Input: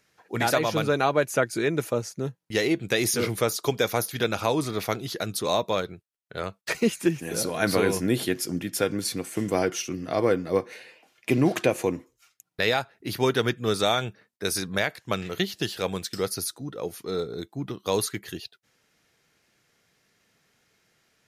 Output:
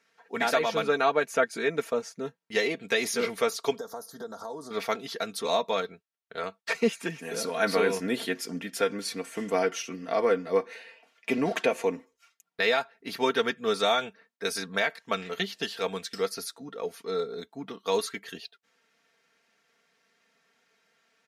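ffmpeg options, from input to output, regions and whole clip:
-filter_complex "[0:a]asettb=1/sr,asplit=3[s0][s1][s2];[s0]atrim=end=3.784[s3];[s1]atrim=start=3.78:end=4.71,asetpts=PTS-STARTPTS,afade=t=in:d=0.004:c=qsin,afade=t=out:st=0.926:d=0.004:c=qsin,acompressor=threshold=0.0251:ratio=4:attack=3.2:release=140:knee=1:detection=peak,asuperstop=centerf=2500:order=4:qfactor=0.69[s4];[s2]atrim=start=4.706[s5];[s3][s4]acrossfade=d=0.004:c1=hsin:c2=qsin[s6];[s6][s5]acrossfade=d=0.004:c1=qsin:c2=hsin,highpass=f=560:p=1,aemphasis=mode=reproduction:type=50kf,aecho=1:1:4.4:0.71"

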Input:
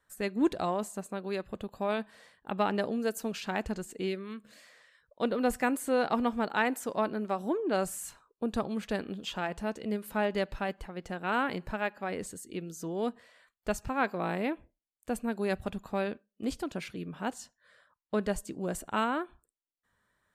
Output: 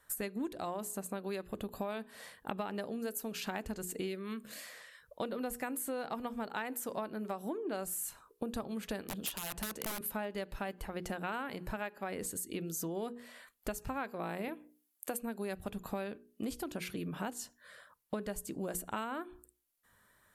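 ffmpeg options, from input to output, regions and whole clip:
-filter_complex "[0:a]asettb=1/sr,asplit=3[s0][s1][s2];[s0]atrim=end=9.084[s3];[s1]atrim=start=9.08:end=10.01,asetpts=PTS-STARTPTS,afade=t=in:d=0.004:c=qsin,afade=t=out:st=0.926:d=0.004:c=qsin,acrossover=split=230|3000[s4][s5][s6];[s5]acompressor=threshold=0.0178:ratio=3:attack=3.2:release=140:knee=2.83:detection=peak[s7];[s4][s7][s6]amix=inputs=3:normalize=0,aeval=exprs='(mod(37.6*val(0)+1,2)-1)/37.6':c=same[s8];[s2]atrim=start=10.006[s9];[s3][s8]acrossfade=d=0.004:c1=hsin:c2=qsin[s10];[s10][s9]acrossfade=d=0.004:c1=qsin:c2=hsin,asettb=1/sr,asplit=3[s11][s12][s13];[s11]atrim=end=14.484[s14];[s12]atrim=start=14.48:end=15.21,asetpts=PTS-STARTPTS,afade=t=in:d=0.004:c=qsin,afade=t=out:st=0.726:d=0.004:c=qsin,highpass=300,highshelf=f=8800:g=5.5[s15];[s13]atrim=start=15.206[s16];[s14][s15]acrossfade=d=0.004:c1=hsin:c2=qsin[s17];[s17][s16]acrossfade=d=0.004:c1=qsin:c2=hsin,equalizer=f=12000:w=1.2:g=13.5,bandreject=f=60:t=h:w=6,bandreject=f=120:t=h:w=6,bandreject=f=180:t=h:w=6,bandreject=f=240:t=h:w=6,bandreject=f=300:t=h:w=6,bandreject=f=360:t=h:w=6,bandreject=f=420:t=h:w=6,bandreject=f=480:t=h:w=6,acompressor=threshold=0.00794:ratio=8,volume=2.11"

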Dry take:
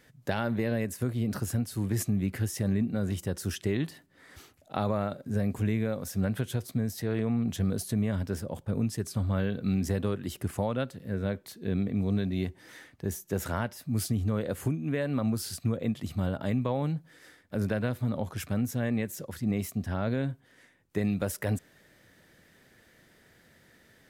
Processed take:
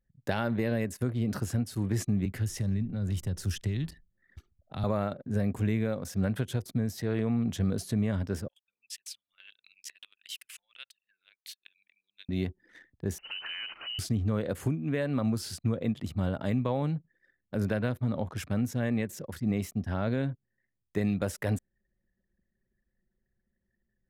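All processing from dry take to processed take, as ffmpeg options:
-filter_complex "[0:a]asettb=1/sr,asplit=3[s0][s1][s2];[s0]atrim=end=2.254[s3];[s1]atrim=start=2.25:end=4.84,asetpts=PTS-STARTPTS,afade=t=in:d=0.004:c=qsin,afade=t=out:st=2.586:d=0.004:c=qsin,acrossover=split=180|3000[s4][s5][s6];[s5]acompressor=threshold=0.01:ratio=4:attack=3.2:release=140:knee=2.83:detection=peak[s7];[s4][s7][s6]amix=inputs=3:normalize=0,asplit=4[s8][s9][s10][s11];[s9]adelay=83,afreqshift=-91,volume=0.0631[s12];[s10]adelay=166,afreqshift=-182,volume=0.0302[s13];[s11]adelay=249,afreqshift=-273,volume=0.0145[s14];[s8][s12][s13][s14]amix=inputs=4:normalize=0,atrim=end_sample=114219,asubboost=boost=2.5:cutoff=190[s15];[s2]atrim=start=4.836[s16];[s3][s15]acrossfade=d=0.004:c1=hsin:c2=qsin[s17];[s17][s16]acrossfade=d=0.004:c1=qsin:c2=hsin,asettb=1/sr,asplit=3[s18][s19][s20];[s18]atrim=end=8.484[s21];[s19]atrim=start=8.48:end=12.29,asetpts=PTS-STARTPTS,afade=t=in:d=0.004:c=qsin,afade=t=out:st=3.806:d=0.004:c=qsin,acompressor=threshold=0.0316:ratio=8:attack=3.2:release=140:knee=1:detection=peak,highpass=f=2700:t=q:w=2.4[s22];[s20]atrim=start=12.286[s23];[s21][s22]acrossfade=d=0.004:c1=hsin:c2=qsin[s24];[s24][s23]acrossfade=d=0.004:c1=qsin:c2=hsin,asettb=1/sr,asplit=3[s25][s26][s27];[s25]atrim=end=13.184[s28];[s26]atrim=start=13.18:end=13.99,asetpts=PTS-STARTPTS,afade=t=in:d=0.004:c=qsin,afade=t=out:st=0.806:d=0.004:c=qsin,aeval=exprs='val(0)+0.5*0.0224*sgn(val(0))':c=same,lowpass=f=2600:t=q:w=0.5098,lowpass=f=2600:t=q:w=0.6013,lowpass=f=2600:t=q:w=0.9,lowpass=f=2600:t=q:w=2.563,afreqshift=-3100,acompressor=threshold=0.0178:ratio=5:attack=3.2:release=140:knee=1:detection=peak[s29];[s27]atrim=start=13.986[s30];[s28][s29]acrossfade=d=0.004:c1=hsin:c2=qsin[s31];[s31][s30]acrossfade=d=0.004:c1=qsin:c2=hsin,anlmdn=0.0251,acrossover=split=8300[s32][s33];[s33]acompressor=threshold=0.00398:ratio=4:attack=1:release=60[s34];[s32][s34]amix=inputs=2:normalize=0"

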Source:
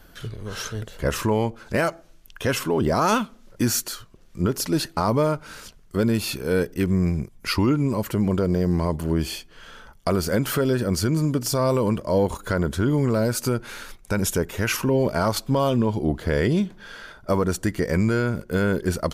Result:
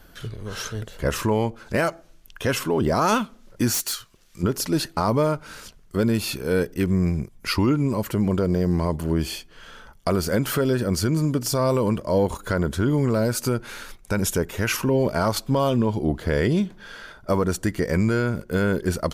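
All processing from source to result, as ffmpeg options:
-filter_complex "[0:a]asettb=1/sr,asplit=3[s0][s1][s2];[s0]atrim=end=3.744[s3];[s1]atrim=start=3.74:end=4.43,asetpts=PTS-STARTPTS,afade=t=in:d=0.004:c=qsin,afade=t=out:st=0.686:d=0.004:c=qsin,tiltshelf=f=1200:g=-7.5,asoftclip=type=hard:threshold=0.075[s4];[s2]atrim=start=4.426[s5];[s3][s4]acrossfade=d=0.004:c1=hsin:c2=qsin[s6];[s6][s5]acrossfade=d=0.004:c1=qsin:c2=hsin"

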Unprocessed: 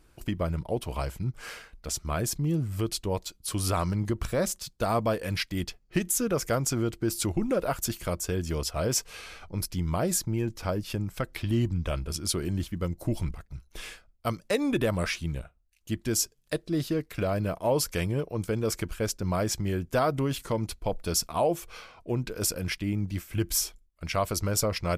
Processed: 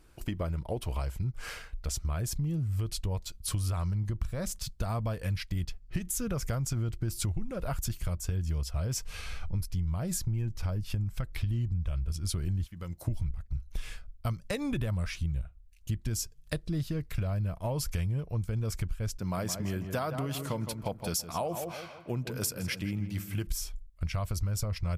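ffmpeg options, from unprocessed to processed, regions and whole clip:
-filter_complex "[0:a]asettb=1/sr,asplit=3[s0][s1][s2];[s0]atrim=end=12.664[s3];[s1]atrim=start=12.66:end=13.08,asetpts=PTS-STARTPTS,afade=t=in:d=0.004:c=qsin,afade=t=out:st=0.416:d=0.004:c=qsin,highpass=f=500:p=1,acompressor=threshold=0.01:ratio=2:attack=3.2:release=140:knee=1:detection=peak[s4];[s2]atrim=start=13.076[s5];[s3][s4]acrossfade=d=0.004:c1=hsin:c2=qsin[s6];[s6][s5]acrossfade=d=0.004:c1=qsin:c2=hsin,asettb=1/sr,asplit=3[s7][s8][s9];[s7]atrim=end=19.194[s10];[s8]atrim=start=19.19:end=23.47,asetpts=PTS-STARTPTS,afade=t=in:d=0.004:c=qsin,afade=t=out:st=4.276:d=0.004:c=qsin,highpass=220,equalizer=f=13000:w=1.1:g=4,asplit=2[s11][s12];[s12]adelay=164,lowpass=f=1900:p=1,volume=0.355,asplit=2[s13][s14];[s14]adelay=164,lowpass=f=1900:p=1,volume=0.42,asplit=2[s15][s16];[s16]adelay=164,lowpass=f=1900:p=1,volume=0.42,asplit=2[s17][s18];[s18]adelay=164,lowpass=f=1900:p=1,volume=0.42,asplit=2[s19][s20];[s20]adelay=164,lowpass=f=1900:p=1,volume=0.42[s21];[s11][s13][s15][s17][s19][s21]amix=inputs=6:normalize=0,atrim=end_sample=188748[s22];[s9]atrim=start=23.466[s23];[s10][s22]acrossfade=d=0.004:c1=hsin:c2=qsin[s24];[s24][s23]acrossfade=d=0.004:c1=qsin:c2=hsin,asubboost=boost=7.5:cutoff=120,acompressor=threshold=0.0355:ratio=6"

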